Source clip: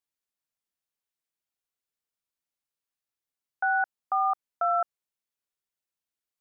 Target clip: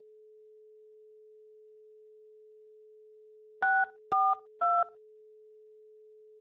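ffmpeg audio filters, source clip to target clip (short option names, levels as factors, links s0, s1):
-filter_complex "[0:a]asettb=1/sr,asplit=3[s0][s1][s2];[s0]atrim=end=3.644[s3];[s1]atrim=start=3.64:end=4.78,asetpts=PTS-STARTPTS,afade=t=in:d=0.004:c=qsin,afade=t=out:st=1.136:d=0.004:c=qsin,lowshelf=f=420:g=-7.5[s4];[s2]atrim=start=4.776[s5];[s3][s4]acrossfade=d=0.004:c1=hsin:c2=qsin[s6];[s6][s5]acrossfade=d=0.004:c1=qsin:c2=hsin,aeval=exprs='val(0)+0.00224*sin(2*PI*430*n/s)':c=same,asplit=2[s7][s8];[s8]adelay=61,lowpass=f=1500:p=1,volume=0.0794,asplit=2[s9][s10];[s10]adelay=61,lowpass=f=1500:p=1,volume=0.21[s11];[s9][s11]amix=inputs=2:normalize=0[s12];[s7][s12]amix=inputs=2:normalize=0" -ar 32000 -c:a libspeex -b:a 15k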